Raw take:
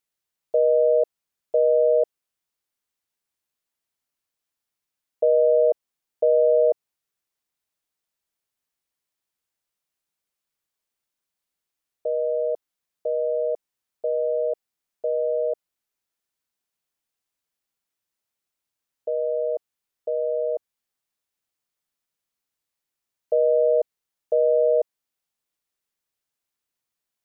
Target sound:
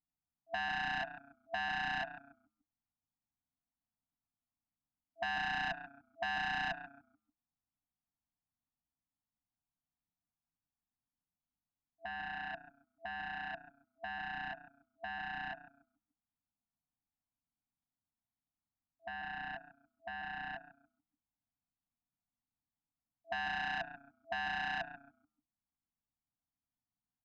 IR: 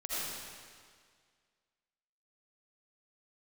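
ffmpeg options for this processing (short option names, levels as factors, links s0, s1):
-filter_complex "[0:a]asplit=5[s0][s1][s2][s3][s4];[s1]adelay=143,afreqshift=-30,volume=0.251[s5];[s2]adelay=286,afreqshift=-60,volume=0.0933[s6];[s3]adelay=429,afreqshift=-90,volume=0.0343[s7];[s4]adelay=572,afreqshift=-120,volume=0.0127[s8];[s0][s5][s6][s7][s8]amix=inputs=5:normalize=0,adynamicsmooth=sensitivity=1:basefreq=610,afftfilt=real='re*(1-between(b*sr/4096,310,660))':imag='im*(1-between(b*sr/4096,310,660))':win_size=4096:overlap=0.75,volume=1.33"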